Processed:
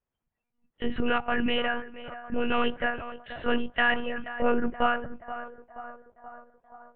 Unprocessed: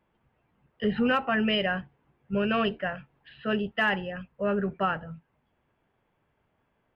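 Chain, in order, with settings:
noise reduction from a noise print of the clip's start 16 dB
speech leveller within 4 dB 0.5 s
on a send: feedback echo with a band-pass in the loop 477 ms, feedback 67%, band-pass 800 Hz, level −11.5 dB
on the sum: one-pitch LPC vocoder at 8 kHz 240 Hz
level +2.5 dB

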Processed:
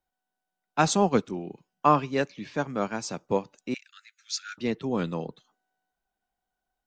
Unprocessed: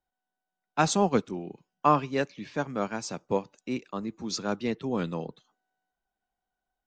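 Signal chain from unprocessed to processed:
0:03.74–0:04.58: Butterworth high-pass 1,400 Hz 96 dB per octave
level +1.5 dB

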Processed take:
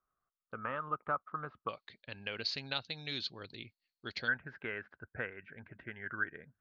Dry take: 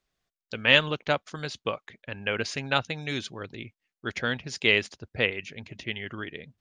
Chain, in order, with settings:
downward compressor 2 to 1, threshold −30 dBFS, peak gain reduction 10 dB
transistor ladder low-pass 1,300 Hz, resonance 85%, from 0:01.68 4,500 Hz, from 0:04.27 1,600 Hz
level +2.5 dB

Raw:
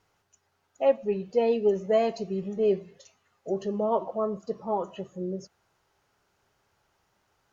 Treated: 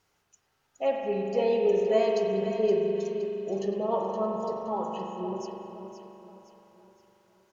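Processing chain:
high-shelf EQ 2,900 Hz +7 dB
repeating echo 519 ms, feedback 43%, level −10 dB
spring reverb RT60 3 s, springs 41 ms, chirp 65 ms, DRR 0 dB
level −4 dB

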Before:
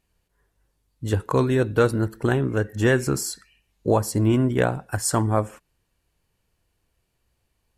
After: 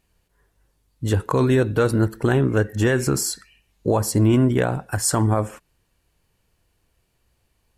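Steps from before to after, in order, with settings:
brickwall limiter −14 dBFS, peak gain reduction 6 dB
level +4.5 dB

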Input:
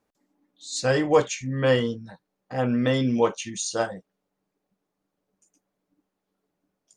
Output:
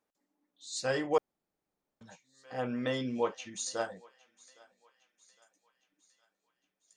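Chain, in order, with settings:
0:03.09–0:03.51: high-frequency loss of the air 95 metres
tape wow and flutter 21 cents
low-shelf EQ 200 Hz −10.5 dB
feedback echo with a high-pass in the loop 810 ms, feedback 57%, high-pass 850 Hz, level −22 dB
0:01.18–0:02.01: fill with room tone
level −7.5 dB

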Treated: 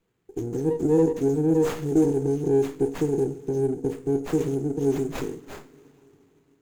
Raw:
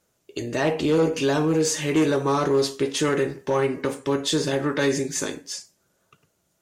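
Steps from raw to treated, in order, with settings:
linear-phase brick-wall band-stop 510–6,200 Hz
coupled-rooms reverb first 0.21 s, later 3.8 s, from −20 dB, DRR 11 dB
windowed peak hold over 9 samples

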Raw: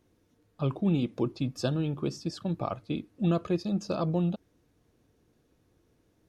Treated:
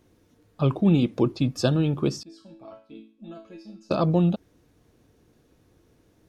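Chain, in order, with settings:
0:02.23–0:03.91: resonators tuned to a chord A3 major, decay 0.42 s
level +7 dB

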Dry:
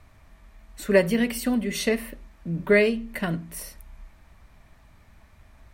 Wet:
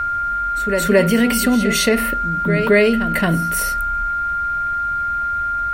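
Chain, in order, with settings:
echo ahead of the sound 221 ms −12.5 dB
steady tone 1,400 Hz −33 dBFS
envelope flattener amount 50%
level +3.5 dB

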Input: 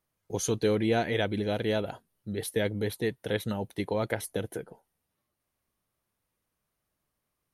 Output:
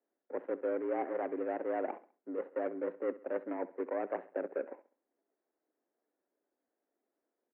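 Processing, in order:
running median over 41 samples
reversed playback
downward compressor, threshold −36 dBFS, peak gain reduction 13 dB
reversed playback
repeating echo 67 ms, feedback 40%, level −17.5 dB
single-sideband voice off tune +77 Hz 220–2,000 Hz
level +5 dB

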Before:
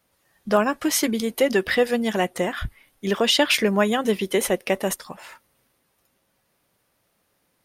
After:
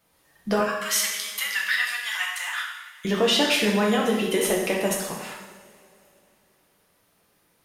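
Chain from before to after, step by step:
0:00.60–0:03.05: Butterworth high-pass 1,100 Hz 36 dB per octave
downward compressor 3 to 1, threshold −23 dBFS, peak gain reduction 7.5 dB
coupled-rooms reverb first 0.91 s, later 3.1 s, from −18 dB, DRR −2 dB

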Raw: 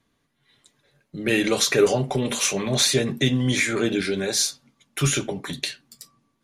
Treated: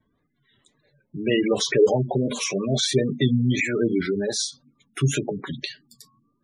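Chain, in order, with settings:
gate on every frequency bin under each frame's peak −15 dB strong
high-shelf EQ 2,400 Hz −6.5 dB
tape wow and flutter 89 cents
level +1.5 dB

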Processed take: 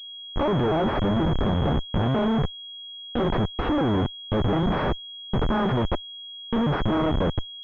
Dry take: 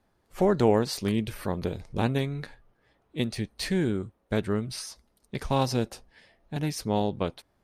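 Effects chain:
pitch shifter gated in a rhythm +7.5 semitones, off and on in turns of 238 ms
comparator with hysteresis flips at −37 dBFS
switching amplifier with a slow clock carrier 3,300 Hz
level +8.5 dB

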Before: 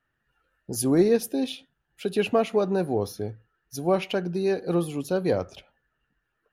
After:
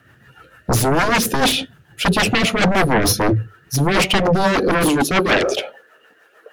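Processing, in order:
high-pass filter sweep 100 Hz → 510 Hz, 0:03.51–0:05.84
reversed playback
downward compressor 8 to 1, threshold −27 dBFS, peak gain reduction 13.5 dB
reversed playback
sine wavefolder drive 16 dB, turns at −18 dBFS
mains-hum notches 50/100/150 Hz
rotating-speaker cabinet horn 6.7 Hz
level +8 dB

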